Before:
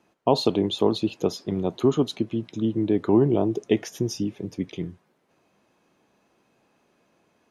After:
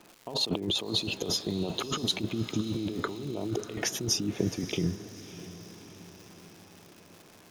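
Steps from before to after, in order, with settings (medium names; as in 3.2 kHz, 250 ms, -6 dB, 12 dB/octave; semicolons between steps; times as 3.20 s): compressor with a negative ratio -32 dBFS, ratio -1; crackle 300 per s -41 dBFS; on a send: echo that smears into a reverb 618 ms, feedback 54%, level -14.5 dB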